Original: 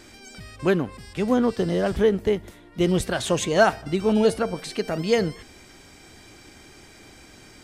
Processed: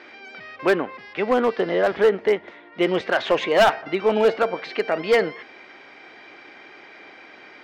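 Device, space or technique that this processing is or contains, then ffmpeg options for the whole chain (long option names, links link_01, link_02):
megaphone: -af "highpass=460,lowpass=2500,lowpass=frequency=5600:width=0.5412,lowpass=frequency=5600:width=1.3066,equalizer=frequency=2100:width_type=o:width=0.51:gain=4.5,asoftclip=type=hard:threshold=-18dB,volume=7dB"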